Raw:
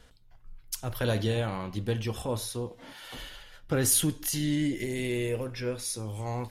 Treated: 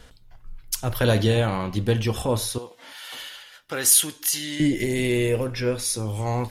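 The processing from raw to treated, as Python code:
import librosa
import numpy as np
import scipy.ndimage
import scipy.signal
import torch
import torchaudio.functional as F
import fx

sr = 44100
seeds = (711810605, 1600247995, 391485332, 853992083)

y = fx.highpass(x, sr, hz=1400.0, slope=6, at=(2.58, 4.6))
y = y * librosa.db_to_amplitude(8.0)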